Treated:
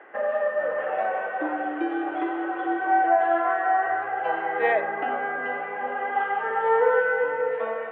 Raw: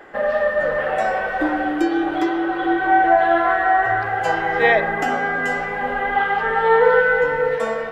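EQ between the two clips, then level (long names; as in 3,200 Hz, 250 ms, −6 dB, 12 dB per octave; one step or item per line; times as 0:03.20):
high-pass filter 360 Hz 12 dB per octave
Butterworth low-pass 2,800 Hz 36 dB per octave
dynamic equaliser 2,000 Hz, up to −5 dB, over −32 dBFS, Q 1.4
−4.5 dB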